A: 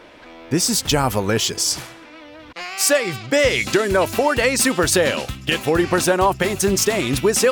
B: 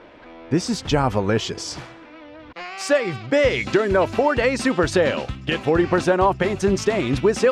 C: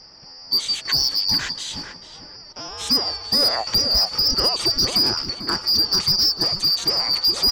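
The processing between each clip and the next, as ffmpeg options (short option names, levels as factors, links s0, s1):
-af "lowpass=6000,highshelf=f=2700:g=-10"
-filter_complex "[0:a]afftfilt=real='real(if(lt(b,272),68*(eq(floor(b/68),0)*1+eq(floor(b/68),1)*2+eq(floor(b/68),2)*3+eq(floor(b/68),3)*0)+mod(b,68),b),0)':imag='imag(if(lt(b,272),68*(eq(floor(b/68),0)*1+eq(floor(b/68),1)*2+eq(floor(b/68),2)*3+eq(floor(b/68),3)*0)+mod(b,68),b),0)':win_size=2048:overlap=0.75,acrossover=split=370[s0][s1];[s1]asoftclip=type=hard:threshold=0.2[s2];[s0][s2]amix=inputs=2:normalize=0,asplit=2[s3][s4];[s4]adelay=443,lowpass=f=1200:p=1,volume=0.562,asplit=2[s5][s6];[s6]adelay=443,lowpass=f=1200:p=1,volume=0.26,asplit=2[s7][s8];[s8]adelay=443,lowpass=f=1200:p=1,volume=0.26[s9];[s3][s5][s7][s9]amix=inputs=4:normalize=0"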